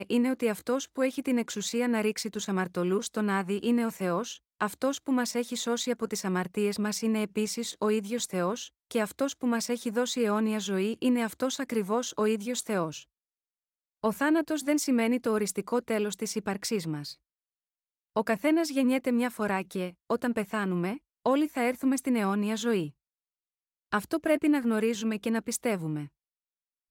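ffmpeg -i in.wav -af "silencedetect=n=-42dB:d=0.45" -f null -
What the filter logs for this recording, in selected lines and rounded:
silence_start: 13.02
silence_end: 14.03 | silence_duration: 1.01
silence_start: 17.13
silence_end: 18.16 | silence_duration: 1.03
silence_start: 22.90
silence_end: 23.92 | silence_duration: 1.03
silence_start: 26.07
silence_end: 26.91 | silence_duration: 0.84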